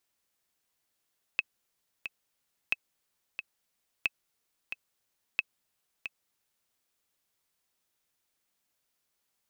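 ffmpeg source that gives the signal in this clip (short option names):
-f lavfi -i "aevalsrc='pow(10,(-13-9.5*gte(mod(t,2*60/90),60/90))/20)*sin(2*PI*2590*mod(t,60/90))*exp(-6.91*mod(t,60/90)/0.03)':d=5.33:s=44100"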